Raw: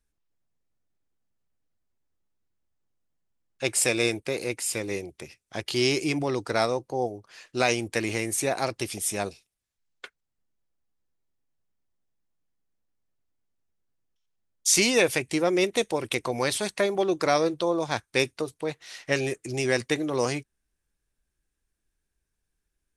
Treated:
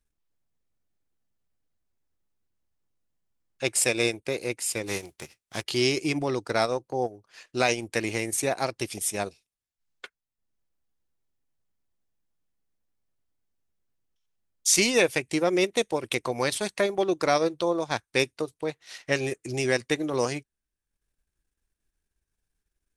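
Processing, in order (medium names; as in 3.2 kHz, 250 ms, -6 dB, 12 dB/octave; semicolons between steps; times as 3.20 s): 4.86–5.62 s: formants flattened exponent 0.6; transient shaper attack 0 dB, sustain -8 dB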